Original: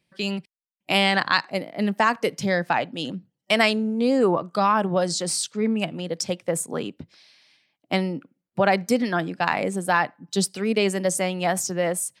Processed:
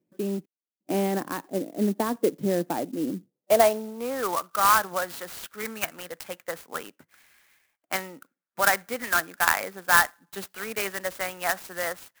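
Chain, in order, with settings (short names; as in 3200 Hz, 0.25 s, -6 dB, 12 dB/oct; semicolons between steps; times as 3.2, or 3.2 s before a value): band-pass sweep 320 Hz -> 1500 Hz, 3.17–4.2; 5.4–6.11 dynamic EQ 2000 Hz, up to +5 dB, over -51 dBFS, Q 0.75; clock jitter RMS 0.054 ms; gain +6.5 dB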